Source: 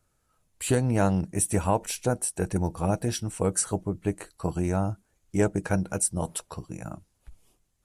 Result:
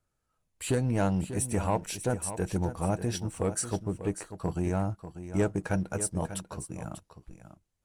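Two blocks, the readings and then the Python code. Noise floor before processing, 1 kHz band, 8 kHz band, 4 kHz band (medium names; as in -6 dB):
-73 dBFS, -3.5 dB, -5.5 dB, -3.0 dB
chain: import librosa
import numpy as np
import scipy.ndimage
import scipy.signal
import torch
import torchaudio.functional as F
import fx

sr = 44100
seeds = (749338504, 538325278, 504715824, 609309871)

y = fx.high_shelf(x, sr, hz=7700.0, db=-6.0)
y = fx.leveller(y, sr, passes=1)
y = y + 10.0 ** (-11.5 / 20.0) * np.pad(y, (int(592 * sr / 1000.0), 0))[:len(y)]
y = F.gain(torch.from_numpy(y), -6.0).numpy()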